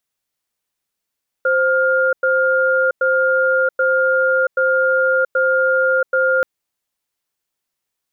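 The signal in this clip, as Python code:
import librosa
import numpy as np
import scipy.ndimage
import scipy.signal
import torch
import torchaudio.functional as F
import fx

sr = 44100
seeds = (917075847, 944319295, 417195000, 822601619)

y = fx.cadence(sr, length_s=4.98, low_hz=523.0, high_hz=1410.0, on_s=0.68, off_s=0.1, level_db=-15.5)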